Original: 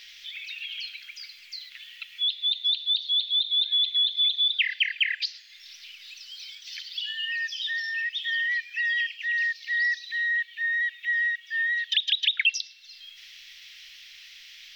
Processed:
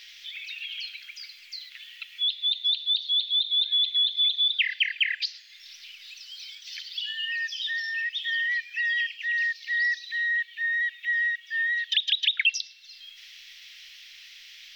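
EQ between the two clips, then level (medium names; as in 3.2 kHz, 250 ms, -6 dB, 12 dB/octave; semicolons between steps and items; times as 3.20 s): bass shelf 470 Hz -3.5 dB; 0.0 dB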